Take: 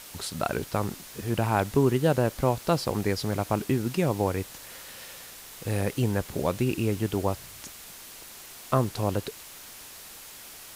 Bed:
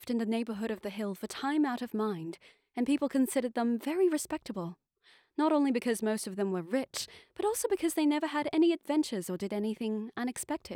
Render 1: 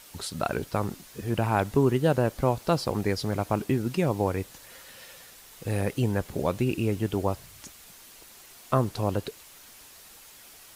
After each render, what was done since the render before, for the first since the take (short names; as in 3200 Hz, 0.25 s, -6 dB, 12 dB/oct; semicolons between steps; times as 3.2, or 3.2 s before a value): denoiser 6 dB, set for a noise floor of -45 dBFS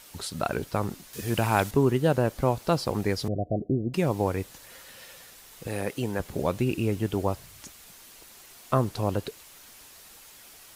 1.13–1.71 high shelf 2100 Hz +9.5 dB; 3.28–3.94 Chebyshev low-pass 730 Hz, order 10; 5.67–6.2 HPF 250 Hz 6 dB/oct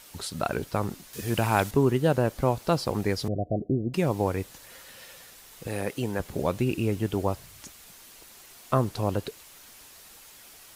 nothing audible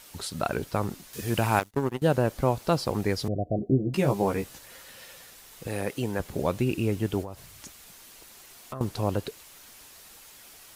1.59–2.02 power-law curve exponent 2; 3.57–4.59 doubler 15 ms -3.5 dB; 7.22–8.81 compressor, threshold -34 dBFS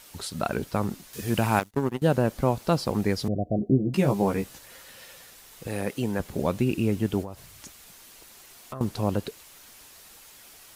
dynamic EQ 210 Hz, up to +5 dB, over -39 dBFS, Q 2.2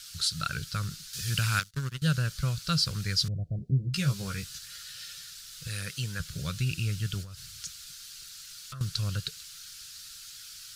EQ curve 160 Hz 0 dB, 220 Hz -19 dB, 350 Hz -22 dB, 510 Hz -18 dB, 850 Hz -28 dB, 1400 Hz +3 dB, 2000 Hz -4 dB, 4500 Hz +11 dB, 14000 Hz -2 dB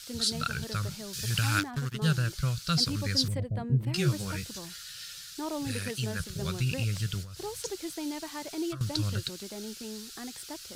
add bed -8 dB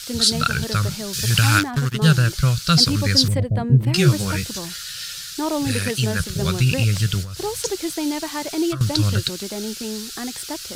gain +11.5 dB; limiter -3 dBFS, peak gain reduction 3 dB